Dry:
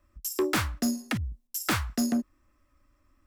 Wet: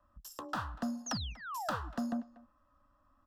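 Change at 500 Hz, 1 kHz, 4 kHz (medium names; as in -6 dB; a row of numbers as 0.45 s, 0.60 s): -12.0 dB, -3.0 dB, -8.5 dB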